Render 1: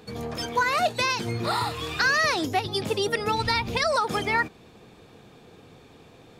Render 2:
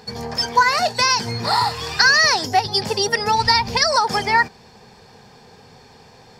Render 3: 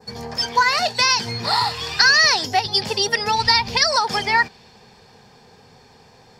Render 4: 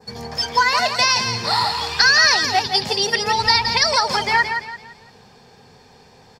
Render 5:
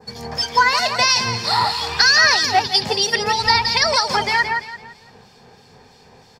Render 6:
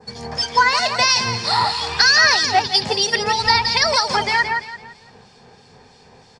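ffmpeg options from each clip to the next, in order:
-af "superequalizer=6b=0.355:9b=2.24:11b=1.78:14b=3.55:15b=1.58,volume=1.41"
-af "adynamicequalizer=threshold=0.0251:dfrequency=3200:dqfactor=1:tfrequency=3200:tqfactor=1:attack=5:release=100:ratio=0.375:range=3.5:mode=boostabove:tftype=bell,volume=0.708"
-af "aecho=1:1:169|338|507|676:0.447|0.152|0.0516|0.0176"
-filter_complex "[0:a]acrossover=split=2400[s0][s1];[s0]aeval=exprs='val(0)*(1-0.5/2+0.5/2*cos(2*PI*3.1*n/s))':c=same[s2];[s1]aeval=exprs='val(0)*(1-0.5/2-0.5/2*cos(2*PI*3.1*n/s))':c=same[s3];[s2][s3]amix=inputs=2:normalize=0,volume=1.41"
-af "aresample=22050,aresample=44100"

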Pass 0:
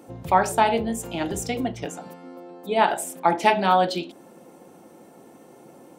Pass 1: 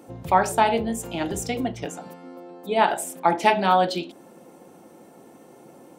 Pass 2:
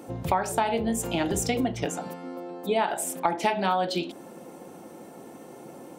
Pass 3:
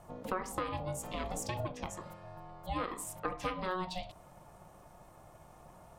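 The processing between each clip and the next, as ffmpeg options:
-af anull
-af "acompressor=threshold=0.0501:ratio=5,volume=1.58"
-af "aeval=exprs='val(0)*sin(2*PI*370*n/s)':c=same,volume=0.376"

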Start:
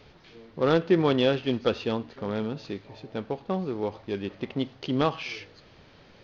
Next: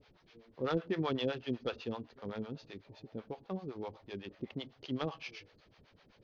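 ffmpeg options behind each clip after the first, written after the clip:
-filter_complex "[0:a]acrossover=split=520[s0][s1];[s0]aeval=exprs='val(0)*(1-1/2+1/2*cos(2*PI*7.9*n/s))':c=same[s2];[s1]aeval=exprs='val(0)*(1-1/2-1/2*cos(2*PI*7.9*n/s))':c=same[s3];[s2][s3]amix=inputs=2:normalize=0,volume=0.473"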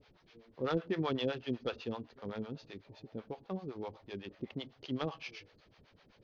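-af anull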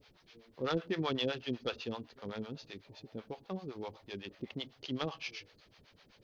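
-af "highshelf=f=2600:g=9,volume=0.891"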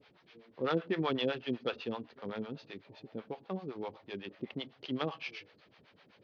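-af "highpass=140,lowpass=3100,volume=1.33"

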